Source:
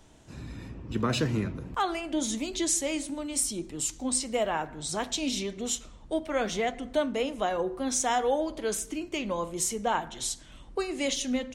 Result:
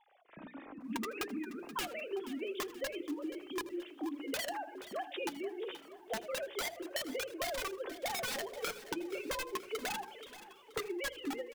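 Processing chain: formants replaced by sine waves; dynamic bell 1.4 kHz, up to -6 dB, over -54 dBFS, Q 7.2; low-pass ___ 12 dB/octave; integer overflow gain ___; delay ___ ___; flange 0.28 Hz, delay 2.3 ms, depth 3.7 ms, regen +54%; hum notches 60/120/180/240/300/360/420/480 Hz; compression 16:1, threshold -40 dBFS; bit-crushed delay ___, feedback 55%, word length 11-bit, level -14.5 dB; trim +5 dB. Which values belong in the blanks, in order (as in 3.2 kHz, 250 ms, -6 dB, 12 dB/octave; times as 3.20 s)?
2.8 kHz, 23.5 dB, 80 ms, -21.5 dB, 478 ms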